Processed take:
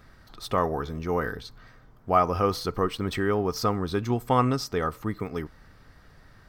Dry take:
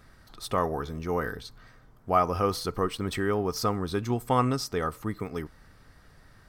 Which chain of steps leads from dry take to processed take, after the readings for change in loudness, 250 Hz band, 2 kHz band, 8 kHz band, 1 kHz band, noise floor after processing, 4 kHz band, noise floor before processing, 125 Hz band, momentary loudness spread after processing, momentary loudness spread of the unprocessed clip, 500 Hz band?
+2.0 dB, +2.0 dB, +2.0 dB, −1.5 dB, +2.0 dB, −55 dBFS, +1.0 dB, −57 dBFS, +2.0 dB, 13 LU, 13 LU, +2.0 dB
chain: parametric band 9,700 Hz −7 dB 0.94 octaves
level +2 dB

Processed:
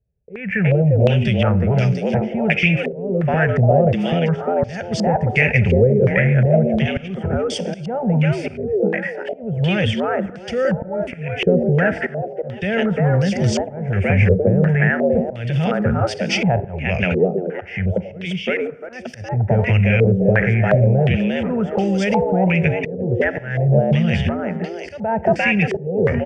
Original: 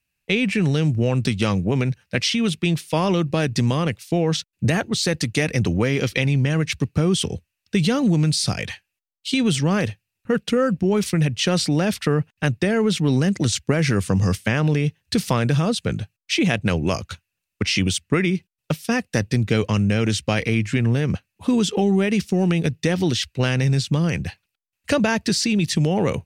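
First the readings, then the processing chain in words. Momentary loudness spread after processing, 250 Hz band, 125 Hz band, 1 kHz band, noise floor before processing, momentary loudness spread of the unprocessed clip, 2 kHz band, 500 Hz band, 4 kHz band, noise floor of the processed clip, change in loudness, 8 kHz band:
10 LU, +0.5 dB, +4.0 dB, +5.0 dB, −82 dBFS, 6 LU, +5.0 dB, +6.0 dB, −5.5 dB, −35 dBFS, +3.0 dB, −11.0 dB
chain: high-pass filter 47 Hz 6 dB per octave
low-shelf EQ 220 Hz +11 dB
on a send: echo with shifted repeats 349 ms, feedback 33%, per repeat +89 Hz, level −3 dB
on the sum: downward compressor 2.5 to 1, threshold −13 dBFS, peak gain reduction 5 dB
in parallel at −2.5 dB: brickwall limiter −12.5 dBFS, peak gain reduction 9.5 dB
on the sum: phaser with its sweep stopped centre 1,100 Hz, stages 6
volume swells 381 ms
four-comb reverb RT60 1.1 s, combs from 32 ms, DRR 17 dB
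low-pass on a step sequencer 2.8 Hz 450–4,700 Hz

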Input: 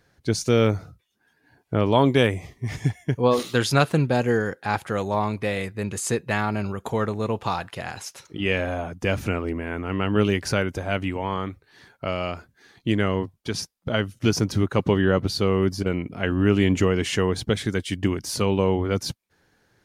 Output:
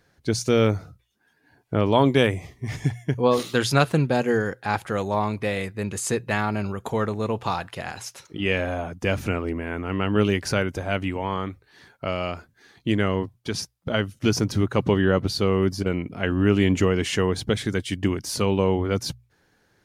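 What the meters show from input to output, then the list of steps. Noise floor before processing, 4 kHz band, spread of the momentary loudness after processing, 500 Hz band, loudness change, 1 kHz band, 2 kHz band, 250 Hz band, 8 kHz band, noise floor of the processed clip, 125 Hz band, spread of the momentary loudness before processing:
−66 dBFS, 0.0 dB, 10 LU, 0.0 dB, 0.0 dB, 0.0 dB, 0.0 dB, 0.0 dB, 0.0 dB, −65 dBFS, −0.5 dB, 10 LU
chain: mains-hum notches 60/120 Hz

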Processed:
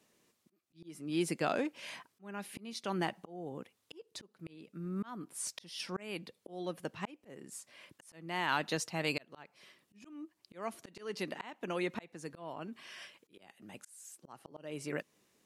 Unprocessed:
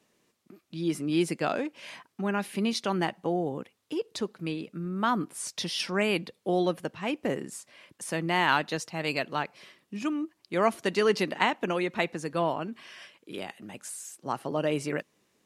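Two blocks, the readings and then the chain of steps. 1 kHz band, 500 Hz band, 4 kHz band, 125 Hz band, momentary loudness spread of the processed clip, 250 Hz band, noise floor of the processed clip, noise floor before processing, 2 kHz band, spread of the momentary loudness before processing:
−11.0 dB, −11.5 dB, −9.5 dB, −9.5 dB, 19 LU, −10.5 dB, −78 dBFS, −74 dBFS, −9.5 dB, 14 LU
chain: high-shelf EQ 6,200 Hz +4.5 dB
volume swells 599 ms
in parallel at −2.5 dB: brickwall limiter −20 dBFS, peak gain reduction 8 dB
on the sum: level −7.5 dB

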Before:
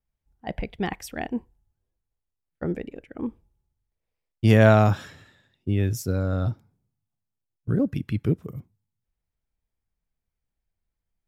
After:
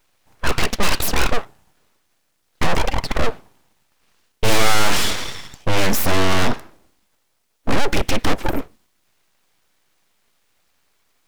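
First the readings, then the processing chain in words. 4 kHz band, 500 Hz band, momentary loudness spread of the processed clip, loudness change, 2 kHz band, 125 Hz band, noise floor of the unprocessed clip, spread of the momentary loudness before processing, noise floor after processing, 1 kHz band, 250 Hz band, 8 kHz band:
+19.0 dB, +2.0 dB, 10 LU, +3.0 dB, +10.0 dB, −3.5 dB, −84 dBFS, 21 LU, −67 dBFS, +8.5 dB, 0.0 dB, +18.0 dB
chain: mid-hump overdrive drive 39 dB, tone 4,300 Hz, clips at −3 dBFS
full-wave rectification

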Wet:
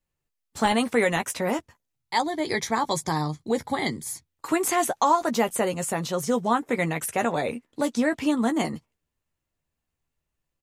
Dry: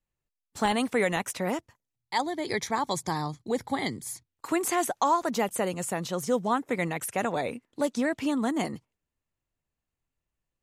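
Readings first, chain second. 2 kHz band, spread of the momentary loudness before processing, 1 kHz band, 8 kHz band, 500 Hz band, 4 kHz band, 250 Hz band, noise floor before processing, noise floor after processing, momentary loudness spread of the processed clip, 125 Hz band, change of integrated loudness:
+3.5 dB, 7 LU, +3.5 dB, +3.5 dB, +3.5 dB, +3.5 dB, +3.5 dB, below −85 dBFS, −83 dBFS, 7 LU, +4.0 dB, +3.5 dB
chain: double-tracking delay 13 ms −8 dB
level +3 dB

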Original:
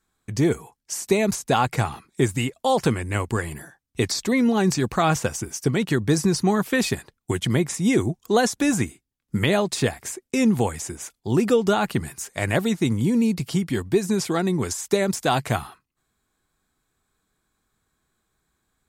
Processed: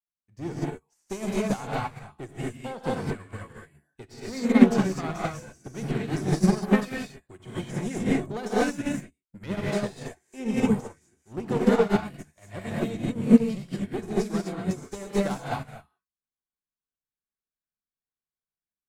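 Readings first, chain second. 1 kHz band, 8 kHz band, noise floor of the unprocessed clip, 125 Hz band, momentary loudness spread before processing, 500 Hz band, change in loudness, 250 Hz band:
−7.5 dB, −13.5 dB, −78 dBFS, −6.5 dB, 10 LU, −5.5 dB, −4.0 dB, −2.5 dB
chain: asymmetric clip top −24 dBFS
high-shelf EQ 4,100 Hz −8 dB
reverb whose tail is shaped and stops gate 270 ms rising, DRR −5 dB
expander for the loud parts 2.5 to 1, over −34 dBFS
level +1.5 dB

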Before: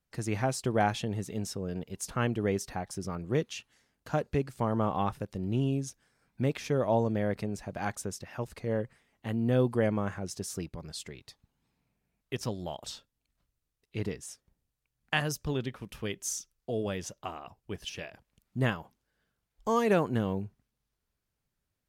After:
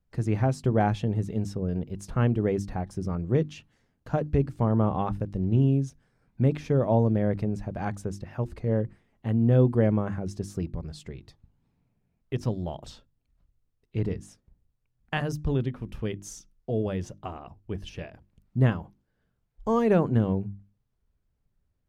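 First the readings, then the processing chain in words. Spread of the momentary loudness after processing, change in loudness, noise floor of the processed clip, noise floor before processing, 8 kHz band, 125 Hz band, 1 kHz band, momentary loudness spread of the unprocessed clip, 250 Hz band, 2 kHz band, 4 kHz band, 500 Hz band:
16 LU, +5.0 dB, −75 dBFS, −84 dBFS, −8.5 dB, +8.0 dB, +0.5 dB, 14 LU, +5.5 dB, −2.5 dB, −5.5 dB, +3.0 dB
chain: spectral tilt −3 dB per octave
mains-hum notches 50/100/150/200/250/300/350 Hz

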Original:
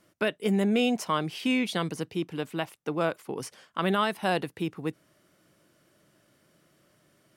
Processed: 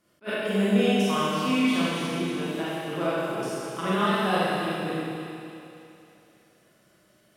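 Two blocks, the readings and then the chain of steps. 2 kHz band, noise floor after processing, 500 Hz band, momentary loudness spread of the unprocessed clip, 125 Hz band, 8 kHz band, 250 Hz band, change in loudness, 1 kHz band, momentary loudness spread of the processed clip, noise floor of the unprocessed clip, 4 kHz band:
+3.0 dB, −62 dBFS, +3.0 dB, 12 LU, +3.5 dB, +3.0 dB, +3.5 dB, +3.0 dB, +3.5 dB, 11 LU, −66 dBFS, +3.0 dB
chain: echo with a time of its own for lows and highs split 530 Hz, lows 197 ms, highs 284 ms, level −10.5 dB
four-comb reverb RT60 2.4 s, combs from 31 ms, DRR −8.5 dB
level that may rise only so fast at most 410 dB per second
level −6.5 dB

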